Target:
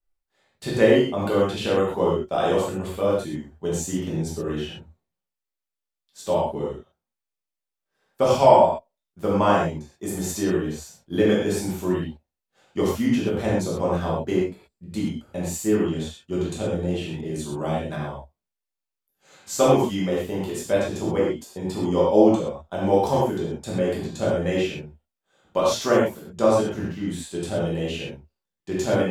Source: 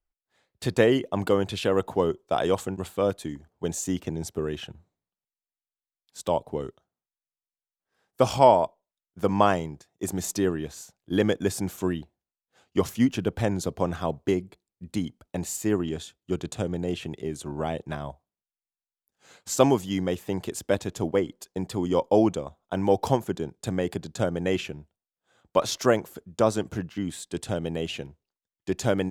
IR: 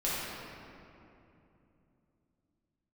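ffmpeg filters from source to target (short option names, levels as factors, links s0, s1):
-filter_complex "[1:a]atrim=start_sample=2205,atrim=end_sample=6174[s0];[0:a][s0]afir=irnorm=-1:irlink=0,asettb=1/sr,asplit=3[s1][s2][s3];[s1]atrim=end=17.214[s4];[s2]atrim=start=17.21:end=17.96,asetpts=PTS-STARTPTS,afade=t=in:d=0.004:c=qsin,afade=t=out:st=0.746:d=0.004:c=qsin,adynamicequalizer=threshold=0.00562:dfrequency=4300:dqfactor=0.7:tfrequency=4300:tqfactor=0.7:attack=5:release=100:ratio=0.375:range=2:mode=boostabove:tftype=highshelf[s5];[s3]atrim=start=17.956[s6];[s4][s5]acrossfade=d=0.004:c1=hsin:c2=qsin[s7];[s7][s6]acrossfade=d=0.004:c1=qsin:c2=hsin,volume=0.708"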